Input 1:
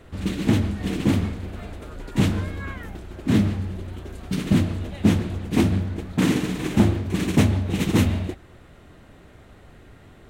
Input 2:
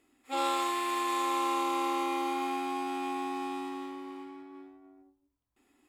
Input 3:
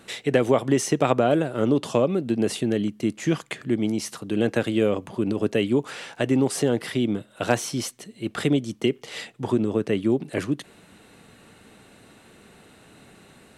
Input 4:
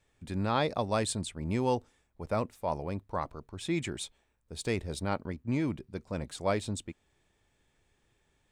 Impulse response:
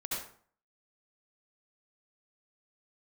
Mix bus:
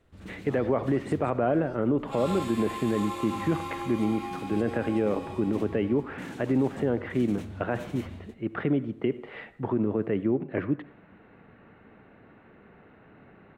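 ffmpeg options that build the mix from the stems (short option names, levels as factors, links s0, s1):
-filter_complex "[0:a]alimiter=limit=0.188:level=0:latency=1,volume=0.133[s0];[1:a]flanger=delay=16.5:depth=3.2:speed=1.4,adelay=1800,volume=0.794[s1];[2:a]lowpass=f=2100:w=0.5412,lowpass=f=2100:w=1.3066,adelay=200,volume=0.75,asplit=2[s2][s3];[s3]volume=0.112[s4];[3:a]volume=0.112[s5];[4:a]atrim=start_sample=2205[s6];[s4][s6]afir=irnorm=-1:irlink=0[s7];[s0][s1][s2][s5][s7]amix=inputs=5:normalize=0,alimiter=limit=0.158:level=0:latency=1:release=29"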